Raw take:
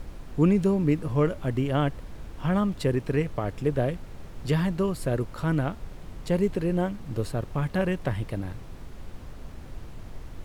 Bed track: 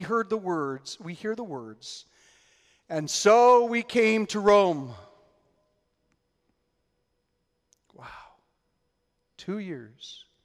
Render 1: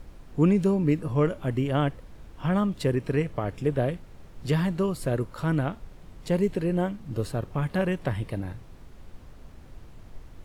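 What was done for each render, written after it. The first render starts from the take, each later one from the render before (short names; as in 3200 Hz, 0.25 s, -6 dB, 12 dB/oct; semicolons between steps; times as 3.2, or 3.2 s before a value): noise print and reduce 6 dB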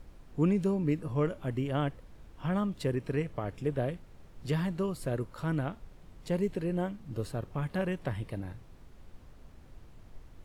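gain -6 dB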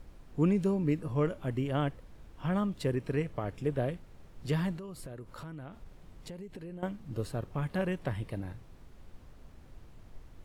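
4.77–6.83 compressor 10:1, threshold -40 dBFS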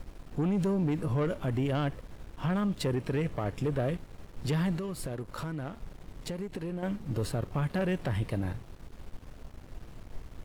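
sample leveller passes 2; limiter -23.5 dBFS, peak gain reduction 7.5 dB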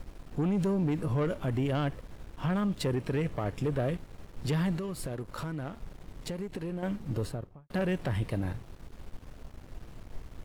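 7.09–7.7 studio fade out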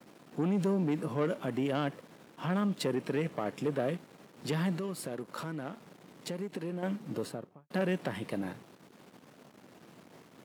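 HPF 170 Hz 24 dB/oct; expander -53 dBFS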